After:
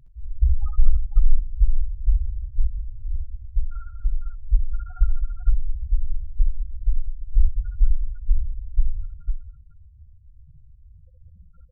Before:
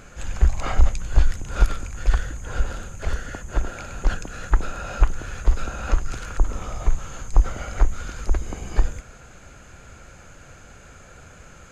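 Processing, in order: loudest bins only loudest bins 2; multi-tap echo 65/77/200/287/503 ms -3.5/-7.5/-10/-18.5/-5.5 dB; trim +1 dB

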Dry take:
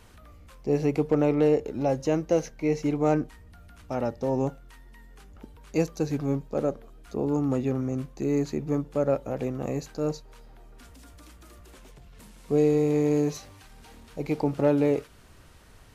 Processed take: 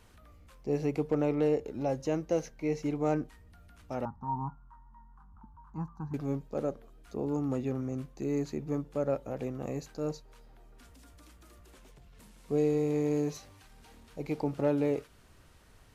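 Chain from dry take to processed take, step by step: 4.05–6.14 s: FFT filter 210 Hz 0 dB, 550 Hz -30 dB, 940 Hz +12 dB, 1.5 kHz -4 dB, 2.2 kHz -28 dB; trim -6 dB

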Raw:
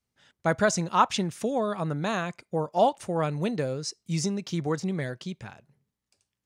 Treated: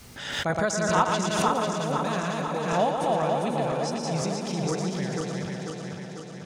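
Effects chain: backward echo that repeats 248 ms, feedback 77%, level -2.5 dB; thinning echo 118 ms, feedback 56%, high-pass 210 Hz, level -6.5 dB; swell ahead of each attack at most 49 dB/s; trim -4 dB

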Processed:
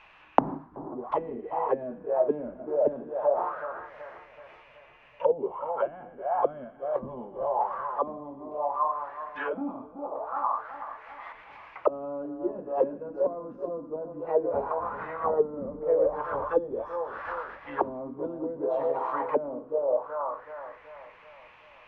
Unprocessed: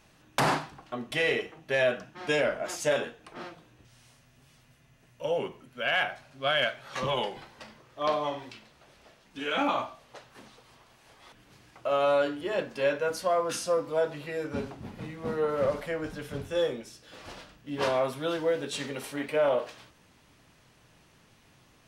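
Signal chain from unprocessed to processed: ten-band graphic EQ 125 Hz -10 dB, 250 Hz -8 dB, 1 kHz +12 dB; two-band feedback delay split 1.2 kHz, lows 377 ms, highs 118 ms, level -8.5 dB; touch-sensitive low-pass 250–2700 Hz down, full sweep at -22.5 dBFS; trim -1 dB

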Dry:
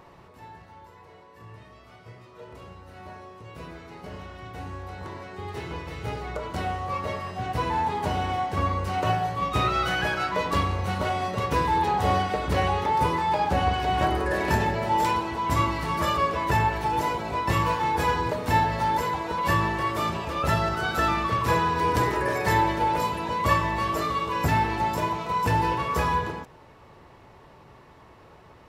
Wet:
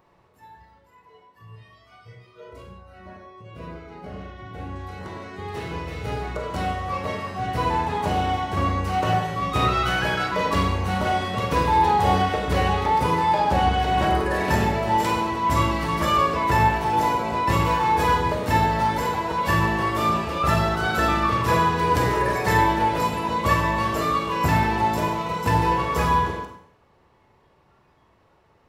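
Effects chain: spectral noise reduction 12 dB; 2.62–4.76 s: treble shelf 3.4 kHz -10.5 dB; Schroeder reverb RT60 0.64 s, combs from 32 ms, DRR 3.5 dB; trim +1.5 dB

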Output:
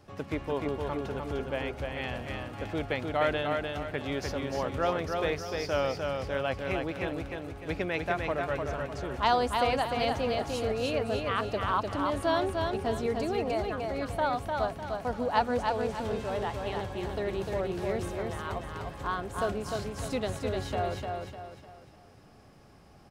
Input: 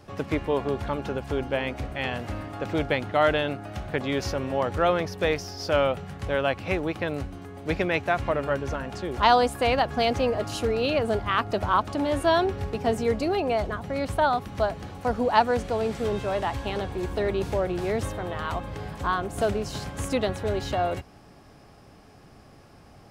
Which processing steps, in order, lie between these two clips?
feedback delay 301 ms, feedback 39%, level -4 dB; trim -6.5 dB

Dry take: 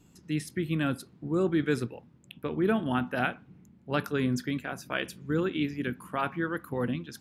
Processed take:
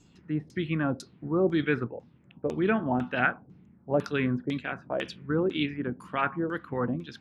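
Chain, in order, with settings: LFO low-pass saw down 2 Hz 500–6900 Hz; 3.21–5.04 s: tape noise reduction on one side only decoder only

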